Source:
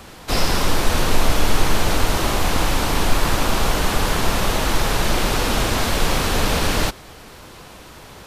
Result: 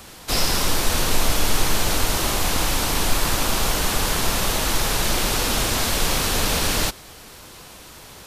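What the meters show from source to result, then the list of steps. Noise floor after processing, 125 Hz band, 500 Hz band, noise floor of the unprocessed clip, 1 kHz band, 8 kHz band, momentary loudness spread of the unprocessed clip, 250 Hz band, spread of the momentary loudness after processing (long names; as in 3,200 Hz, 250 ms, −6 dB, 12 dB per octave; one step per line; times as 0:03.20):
−43 dBFS, −4.0 dB, −4.0 dB, −41 dBFS, −3.5 dB, +4.0 dB, 4 LU, −4.0 dB, 20 LU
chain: high-shelf EQ 3,700 Hz +9.5 dB
level −4 dB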